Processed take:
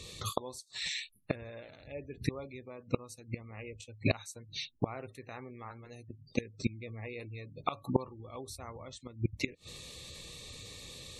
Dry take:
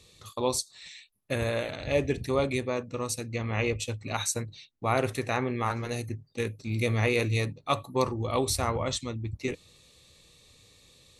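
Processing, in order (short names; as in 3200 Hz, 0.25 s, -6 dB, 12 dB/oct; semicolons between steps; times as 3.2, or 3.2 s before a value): flipped gate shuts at -25 dBFS, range -27 dB; spectral gate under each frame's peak -25 dB strong; gain +10 dB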